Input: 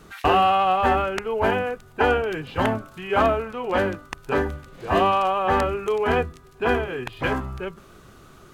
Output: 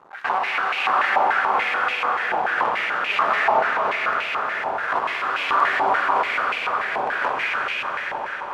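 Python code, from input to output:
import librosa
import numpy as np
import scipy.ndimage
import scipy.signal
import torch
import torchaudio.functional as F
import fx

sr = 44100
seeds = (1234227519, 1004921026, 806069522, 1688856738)

p1 = fx.cycle_switch(x, sr, every=2, mode='muted')
p2 = fx.rider(p1, sr, range_db=10, speed_s=0.5)
p3 = p1 + (p2 * 10.0 ** (0.0 / 20.0))
p4 = np.clip(10.0 ** (17.0 / 20.0) * p3, -1.0, 1.0) / 10.0 ** (17.0 / 20.0)
p5 = fx.chopper(p4, sr, hz=1.3, depth_pct=60, duty_pct=50)
p6 = fx.echo_swell(p5, sr, ms=90, loudest=5, wet_db=-13.0)
p7 = fx.rev_plate(p6, sr, seeds[0], rt60_s=3.9, hf_ratio=0.95, predelay_ms=110, drr_db=-4.0)
p8 = fx.resample_bad(p7, sr, factor=2, down='filtered', up='hold', at=(3.5, 4.55))
p9 = fx.filter_held_bandpass(p8, sr, hz=6.9, low_hz=860.0, high_hz=2500.0)
y = p9 * 10.0 ** (8.0 / 20.0)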